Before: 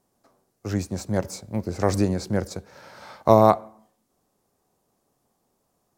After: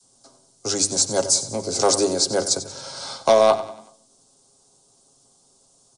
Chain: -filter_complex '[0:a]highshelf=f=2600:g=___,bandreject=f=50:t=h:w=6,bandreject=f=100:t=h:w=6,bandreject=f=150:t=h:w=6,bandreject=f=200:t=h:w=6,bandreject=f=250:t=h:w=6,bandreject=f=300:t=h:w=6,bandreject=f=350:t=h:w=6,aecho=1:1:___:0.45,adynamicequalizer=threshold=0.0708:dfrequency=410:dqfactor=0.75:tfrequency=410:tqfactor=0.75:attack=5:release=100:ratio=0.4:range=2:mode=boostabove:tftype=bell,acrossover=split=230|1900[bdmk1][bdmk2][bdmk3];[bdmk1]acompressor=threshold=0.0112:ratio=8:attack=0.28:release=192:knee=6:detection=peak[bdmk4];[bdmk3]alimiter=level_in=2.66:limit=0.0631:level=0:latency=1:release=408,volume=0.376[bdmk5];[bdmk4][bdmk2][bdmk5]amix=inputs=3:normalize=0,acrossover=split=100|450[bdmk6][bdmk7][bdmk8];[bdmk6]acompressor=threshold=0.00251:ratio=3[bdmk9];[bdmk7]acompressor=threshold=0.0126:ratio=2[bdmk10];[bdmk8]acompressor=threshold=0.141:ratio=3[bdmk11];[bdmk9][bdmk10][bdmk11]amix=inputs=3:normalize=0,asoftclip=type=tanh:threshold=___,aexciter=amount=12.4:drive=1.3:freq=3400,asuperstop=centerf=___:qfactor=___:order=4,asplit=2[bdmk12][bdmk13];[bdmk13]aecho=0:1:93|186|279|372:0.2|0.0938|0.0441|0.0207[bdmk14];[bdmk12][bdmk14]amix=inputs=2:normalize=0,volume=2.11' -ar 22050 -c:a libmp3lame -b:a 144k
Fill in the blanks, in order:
-7.5, 7.4, 0.224, 1800, 7.4